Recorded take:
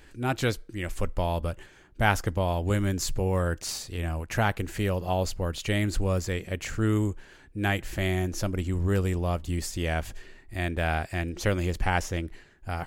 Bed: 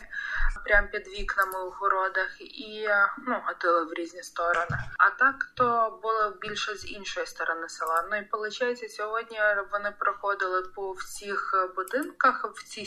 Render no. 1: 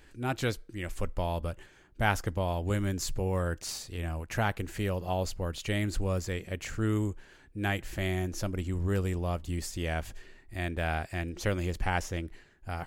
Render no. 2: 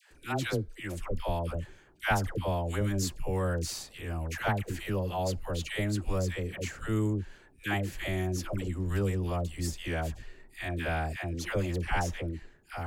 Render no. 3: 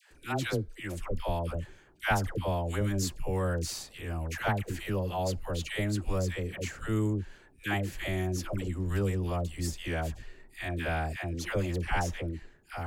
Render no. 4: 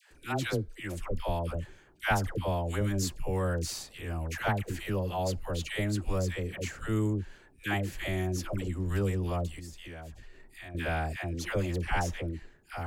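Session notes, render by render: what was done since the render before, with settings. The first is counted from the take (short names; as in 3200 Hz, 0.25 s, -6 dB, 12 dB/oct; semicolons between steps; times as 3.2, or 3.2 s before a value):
gain -4 dB
dispersion lows, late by 0.112 s, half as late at 790 Hz
nothing audible
9.59–10.75 compressor 2.5:1, threshold -46 dBFS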